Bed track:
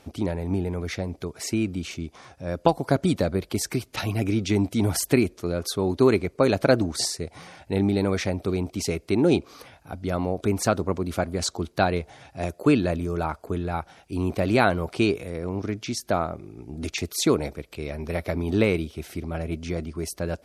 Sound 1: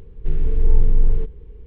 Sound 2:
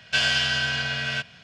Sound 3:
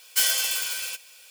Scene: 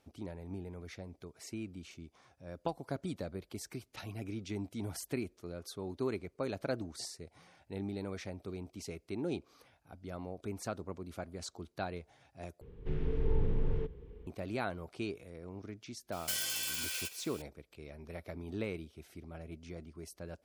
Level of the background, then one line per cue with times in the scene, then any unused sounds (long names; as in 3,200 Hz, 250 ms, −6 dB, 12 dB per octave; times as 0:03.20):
bed track −17 dB
0:12.61: overwrite with 1 −3 dB + high-pass filter 130 Hz 6 dB per octave
0:16.12: mix in 3 −2.5 dB + downward compressor 3 to 1, threshold −33 dBFS
not used: 2